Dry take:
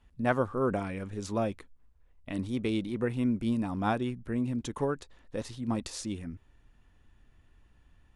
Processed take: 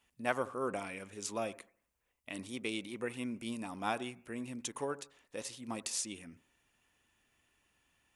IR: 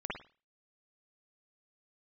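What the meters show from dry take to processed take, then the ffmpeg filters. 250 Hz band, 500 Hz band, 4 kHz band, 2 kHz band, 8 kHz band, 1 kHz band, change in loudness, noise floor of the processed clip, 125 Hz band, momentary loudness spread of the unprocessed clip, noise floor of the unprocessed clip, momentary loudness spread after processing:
−11.0 dB, −7.0 dB, +0.5 dB, −2.0 dB, +5.0 dB, −5.0 dB, −7.0 dB, −82 dBFS, −16.0 dB, 10 LU, −63 dBFS, 10 LU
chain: -filter_complex "[0:a]highpass=frequency=530:poles=1,aexciter=amount=1.7:drive=5.8:freq=2200,asplit=2[link_01][link_02];[1:a]atrim=start_sample=2205,asetrate=30429,aresample=44100[link_03];[link_02][link_03]afir=irnorm=-1:irlink=0,volume=-22dB[link_04];[link_01][link_04]amix=inputs=2:normalize=0,volume=-4dB"

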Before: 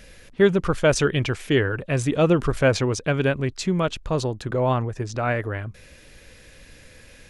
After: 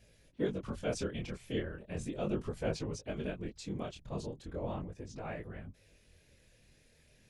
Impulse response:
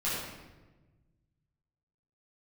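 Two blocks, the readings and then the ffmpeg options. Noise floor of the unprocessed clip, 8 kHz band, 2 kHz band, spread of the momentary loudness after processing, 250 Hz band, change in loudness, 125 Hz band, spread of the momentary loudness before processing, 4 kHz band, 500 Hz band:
−49 dBFS, −16.5 dB, −21.0 dB, 8 LU, −14.5 dB, −17.0 dB, −17.5 dB, 7 LU, −17.0 dB, −17.0 dB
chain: -af "afftfilt=real='hypot(re,im)*cos(2*PI*random(0))':imag='hypot(re,im)*sin(2*PI*random(1))':win_size=512:overlap=0.75,equalizer=frequency=1400:width=1.1:gain=-6.5,flanger=delay=18.5:depth=7.8:speed=0.37,volume=-7dB"

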